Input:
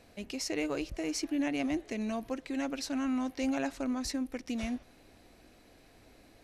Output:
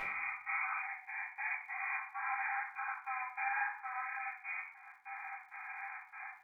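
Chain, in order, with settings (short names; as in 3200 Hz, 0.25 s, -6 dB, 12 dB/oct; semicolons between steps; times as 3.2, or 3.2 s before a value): spectral swells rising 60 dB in 2.95 s; compressor 4:1, threshold -47 dBFS, peak gain reduction 18 dB; step gate "xx.xxx.x.x." 98 bpm -60 dB; brick-wall FIR band-pass 740–2500 Hz; shoebox room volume 67 m³, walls mixed, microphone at 2.2 m; crackle 190/s -71 dBFS; gain +8 dB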